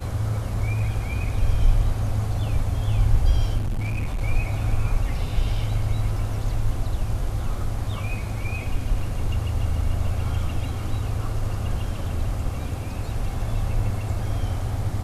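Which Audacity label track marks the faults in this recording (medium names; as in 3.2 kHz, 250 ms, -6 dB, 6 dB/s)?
3.570000	4.220000	clipped -22 dBFS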